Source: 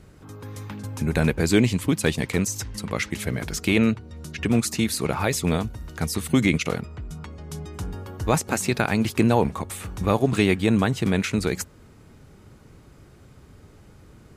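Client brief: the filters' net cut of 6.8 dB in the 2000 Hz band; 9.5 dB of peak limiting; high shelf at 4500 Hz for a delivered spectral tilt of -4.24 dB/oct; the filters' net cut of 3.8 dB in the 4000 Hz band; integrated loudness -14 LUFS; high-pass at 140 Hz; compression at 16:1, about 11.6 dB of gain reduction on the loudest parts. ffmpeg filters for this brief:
-af "highpass=140,equalizer=f=2k:t=o:g=-8.5,equalizer=f=4k:t=o:g=-7.5,highshelf=f=4.5k:g=9,acompressor=threshold=-26dB:ratio=16,volume=20dB,alimiter=limit=-2dB:level=0:latency=1"

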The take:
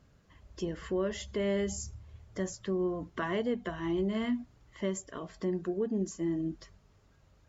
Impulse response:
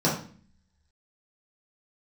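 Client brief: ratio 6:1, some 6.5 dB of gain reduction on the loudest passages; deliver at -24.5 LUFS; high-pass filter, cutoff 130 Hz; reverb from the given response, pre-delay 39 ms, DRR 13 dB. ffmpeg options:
-filter_complex "[0:a]highpass=130,acompressor=threshold=-34dB:ratio=6,asplit=2[a][b];[1:a]atrim=start_sample=2205,adelay=39[c];[b][c]afir=irnorm=-1:irlink=0,volume=-27dB[d];[a][d]amix=inputs=2:normalize=0,volume=14.5dB"

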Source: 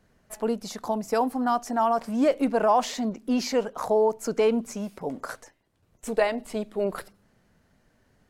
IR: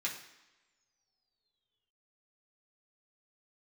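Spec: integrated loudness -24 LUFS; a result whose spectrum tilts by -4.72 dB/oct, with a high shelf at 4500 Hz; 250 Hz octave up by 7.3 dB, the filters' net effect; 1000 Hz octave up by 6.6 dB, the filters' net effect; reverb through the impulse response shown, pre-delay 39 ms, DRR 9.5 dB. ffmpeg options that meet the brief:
-filter_complex "[0:a]equalizer=f=250:t=o:g=7.5,equalizer=f=1k:t=o:g=7.5,highshelf=f=4.5k:g=8.5,asplit=2[a][b];[1:a]atrim=start_sample=2205,adelay=39[c];[b][c]afir=irnorm=-1:irlink=0,volume=-12.5dB[d];[a][d]amix=inputs=2:normalize=0,volume=-3.5dB"

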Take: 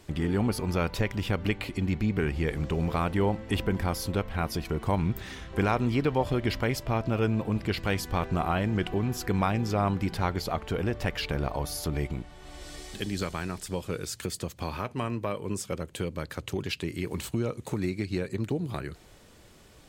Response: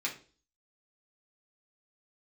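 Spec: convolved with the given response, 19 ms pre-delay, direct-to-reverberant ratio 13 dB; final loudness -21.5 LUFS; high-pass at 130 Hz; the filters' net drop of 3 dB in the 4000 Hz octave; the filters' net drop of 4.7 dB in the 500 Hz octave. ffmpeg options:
-filter_complex "[0:a]highpass=130,equalizer=f=500:t=o:g=-6,equalizer=f=4k:t=o:g=-4,asplit=2[a][b];[1:a]atrim=start_sample=2205,adelay=19[c];[b][c]afir=irnorm=-1:irlink=0,volume=-17.5dB[d];[a][d]amix=inputs=2:normalize=0,volume=11.5dB"

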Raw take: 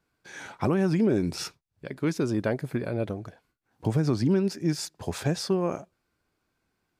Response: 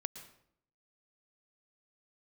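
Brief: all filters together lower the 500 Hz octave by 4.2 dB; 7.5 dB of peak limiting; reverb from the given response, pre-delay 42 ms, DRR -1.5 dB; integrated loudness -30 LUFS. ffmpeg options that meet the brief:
-filter_complex "[0:a]equalizer=f=500:t=o:g=-6,alimiter=limit=-22dB:level=0:latency=1,asplit=2[a][b];[1:a]atrim=start_sample=2205,adelay=42[c];[b][c]afir=irnorm=-1:irlink=0,volume=3dB[d];[a][d]amix=inputs=2:normalize=0,volume=-1.5dB"

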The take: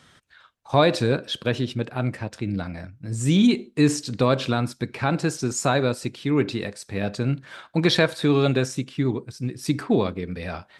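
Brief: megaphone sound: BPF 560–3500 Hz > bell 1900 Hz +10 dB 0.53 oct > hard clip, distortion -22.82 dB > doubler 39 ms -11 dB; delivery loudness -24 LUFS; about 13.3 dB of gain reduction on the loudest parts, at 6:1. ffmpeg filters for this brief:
-filter_complex "[0:a]acompressor=threshold=-28dB:ratio=6,highpass=560,lowpass=3.5k,equalizer=f=1.9k:t=o:w=0.53:g=10,asoftclip=type=hard:threshold=-23dB,asplit=2[a][b];[b]adelay=39,volume=-11dB[c];[a][c]amix=inputs=2:normalize=0,volume=13dB"

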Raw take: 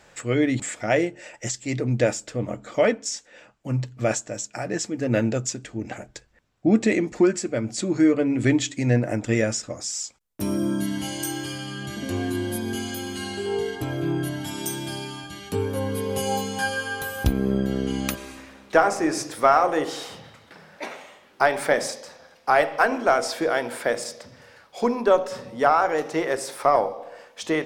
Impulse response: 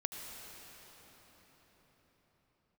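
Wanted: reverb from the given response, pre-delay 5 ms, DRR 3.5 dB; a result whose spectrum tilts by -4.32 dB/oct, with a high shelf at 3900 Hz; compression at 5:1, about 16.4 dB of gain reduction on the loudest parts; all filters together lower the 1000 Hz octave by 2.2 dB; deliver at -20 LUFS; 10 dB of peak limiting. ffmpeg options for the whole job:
-filter_complex "[0:a]equalizer=f=1k:t=o:g=-3,highshelf=f=3.9k:g=-4,acompressor=threshold=-33dB:ratio=5,alimiter=level_in=3dB:limit=-24dB:level=0:latency=1,volume=-3dB,asplit=2[a][b];[1:a]atrim=start_sample=2205,adelay=5[c];[b][c]afir=irnorm=-1:irlink=0,volume=-4.5dB[d];[a][d]amix=inputs=2:normalize=0,volume=16.5dB"

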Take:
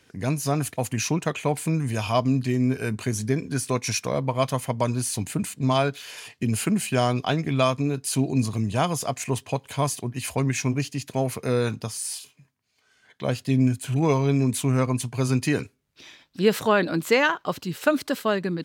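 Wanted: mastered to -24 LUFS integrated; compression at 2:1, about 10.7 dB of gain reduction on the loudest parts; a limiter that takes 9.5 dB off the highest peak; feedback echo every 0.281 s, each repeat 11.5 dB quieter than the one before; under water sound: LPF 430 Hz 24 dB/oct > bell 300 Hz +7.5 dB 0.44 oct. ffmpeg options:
-af "acompressor=threshold=-35dB:ratio=2,alimiter=level_in=3dB:limit=-24dB:level=0:latency=1,volume=-3dB,lowpass=f=430:w=0.5412,lowpass=f=430:w=1.3066,equalizer=f=300:t=o:w=0.44:g=7.5,aecho=1:1:281|562|843:0.266|0.0718|0.0194,volume=12.5dB"

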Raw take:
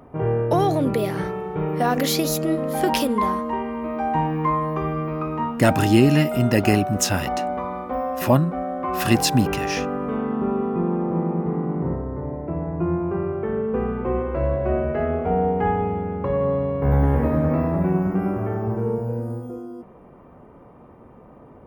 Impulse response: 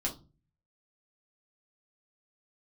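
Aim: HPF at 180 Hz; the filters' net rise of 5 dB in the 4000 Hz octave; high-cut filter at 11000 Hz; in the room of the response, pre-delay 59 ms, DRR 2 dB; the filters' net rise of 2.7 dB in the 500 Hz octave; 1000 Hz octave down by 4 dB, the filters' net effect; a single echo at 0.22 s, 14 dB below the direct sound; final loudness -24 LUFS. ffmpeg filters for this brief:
-filter_complex "[0:a]highpass=180,lowpass=11k,equalizer=f=500:t=o:g=5.5,equalizer=f=1k:t=o:g=-8.5,equalizer=f=4k:t=o:g=7,aecho=1:1:220:0.2,asplit=2[a][b];[1:a]atrim=start_sample=2205,adelay=59[c];[b][c]afir=irnorm=-1:irlink=0,volume=-5dB[d];[a][d]amix=inputs=2:normalize=0,volume=-5dB"

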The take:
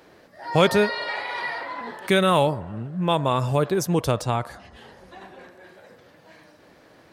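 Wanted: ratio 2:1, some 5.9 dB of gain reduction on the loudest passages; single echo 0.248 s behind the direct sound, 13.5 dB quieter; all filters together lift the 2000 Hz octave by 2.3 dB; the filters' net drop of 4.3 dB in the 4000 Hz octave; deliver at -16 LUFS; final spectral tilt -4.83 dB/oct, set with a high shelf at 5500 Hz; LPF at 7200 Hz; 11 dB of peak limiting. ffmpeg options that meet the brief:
-af "lowpass=7.2k,equalizer=f=2k:t=o:g=4.5,equalizer=f=4k:t=o:g=-5.5,highshelf=f=5.5k:g=-3.5,acompressor=threshold=-24dB:ratio=2,alimiter=limit=-20.5dB:level=0:latency=1,aecho=1:1:248:0.211,volume=14.5dB"

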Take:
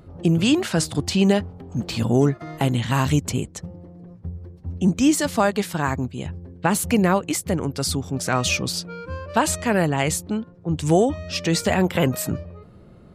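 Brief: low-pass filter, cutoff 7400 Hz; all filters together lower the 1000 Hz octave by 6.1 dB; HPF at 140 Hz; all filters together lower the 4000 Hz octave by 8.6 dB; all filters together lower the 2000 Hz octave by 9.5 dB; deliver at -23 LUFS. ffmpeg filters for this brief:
-af "highpass=140,lowpass=7.4k,equalizer=f=1k:t=o:g=-6,equalizer=f=2k:t=o:g=-8.5,equalizer=f=4k:t=o:g=-8,volume=1.5dB"

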